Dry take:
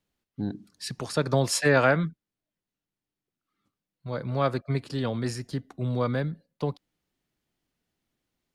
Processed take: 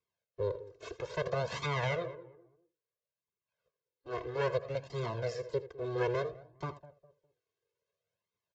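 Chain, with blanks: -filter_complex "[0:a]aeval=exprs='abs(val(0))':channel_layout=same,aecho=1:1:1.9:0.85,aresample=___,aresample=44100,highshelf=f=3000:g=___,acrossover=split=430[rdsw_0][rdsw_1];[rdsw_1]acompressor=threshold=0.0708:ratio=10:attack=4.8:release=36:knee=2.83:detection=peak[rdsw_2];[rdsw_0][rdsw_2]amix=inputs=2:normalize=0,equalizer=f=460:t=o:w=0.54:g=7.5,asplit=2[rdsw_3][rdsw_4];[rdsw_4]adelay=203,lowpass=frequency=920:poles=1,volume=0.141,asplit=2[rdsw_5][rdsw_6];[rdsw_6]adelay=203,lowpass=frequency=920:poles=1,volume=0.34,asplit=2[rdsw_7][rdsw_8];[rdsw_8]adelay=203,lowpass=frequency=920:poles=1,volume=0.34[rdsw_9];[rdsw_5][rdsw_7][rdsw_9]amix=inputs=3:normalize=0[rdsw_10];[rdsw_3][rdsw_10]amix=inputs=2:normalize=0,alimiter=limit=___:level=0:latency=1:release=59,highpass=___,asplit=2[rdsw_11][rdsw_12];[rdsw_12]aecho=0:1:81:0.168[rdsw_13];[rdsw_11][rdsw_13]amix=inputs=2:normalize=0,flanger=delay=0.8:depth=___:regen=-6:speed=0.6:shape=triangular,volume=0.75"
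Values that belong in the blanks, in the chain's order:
16000, -5.5, 0.224, 120, 2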